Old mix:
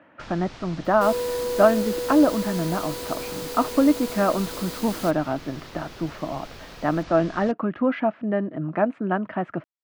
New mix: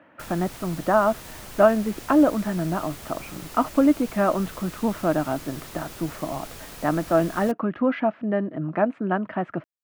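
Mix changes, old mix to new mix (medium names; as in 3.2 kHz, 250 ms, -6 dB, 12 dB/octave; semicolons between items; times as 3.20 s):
first sound: remove low-pass 5.4 kHz 24 dB/octave; second sound: muted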